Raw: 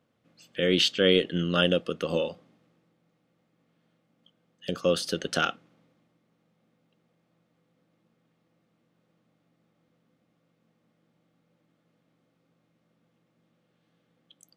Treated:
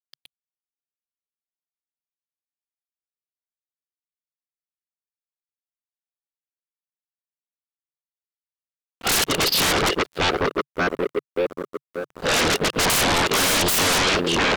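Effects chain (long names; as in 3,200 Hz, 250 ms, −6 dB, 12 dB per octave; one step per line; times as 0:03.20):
played backwards from end to start
hollow resonant body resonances 410/2,800 Hz, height 9 dB, ringing for 40 ms
on a send: feedback echo with a band-pass in the loop 581 ms, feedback 53%, band-pass 380 Hz, level −5 dB
on the sum: leveller curve on the samples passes 3
downsampling to 11,025 Hz
centre clipping without the shift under −51 dBFS
parametric band 140 Hz −7 dB 0.23 octaves
sine wavefolder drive 7 dB, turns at −16 dBFS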